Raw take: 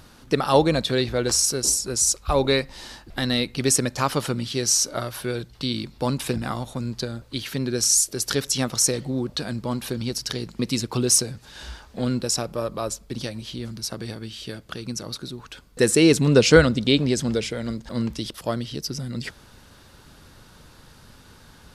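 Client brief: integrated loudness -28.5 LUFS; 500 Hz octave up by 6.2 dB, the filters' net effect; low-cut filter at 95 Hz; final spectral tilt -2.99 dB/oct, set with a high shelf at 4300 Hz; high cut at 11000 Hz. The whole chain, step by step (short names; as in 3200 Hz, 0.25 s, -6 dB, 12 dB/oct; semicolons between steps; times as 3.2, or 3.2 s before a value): HPF 95 Hz; LPF 11000 Hz; bell 500 Hz +7 dB; high shelf 4300 Hz +7 dB; gain -10 dB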